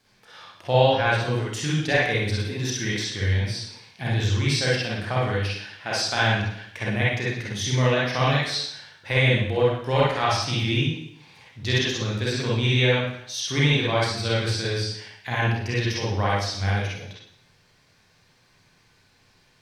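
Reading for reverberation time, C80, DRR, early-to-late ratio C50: 0.70 s, 4.5 dB, -6.5 dB, -2.5 dB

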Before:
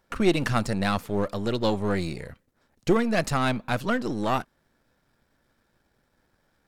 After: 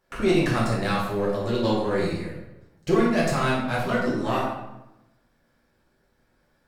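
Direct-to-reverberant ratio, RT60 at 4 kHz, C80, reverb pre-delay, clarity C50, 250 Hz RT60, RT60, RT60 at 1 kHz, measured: -6.5 dB, 0.65 s, 5.0 dB, 4 ms, 1.5 dB, 1.1 s, 0.95 s, 0.90 s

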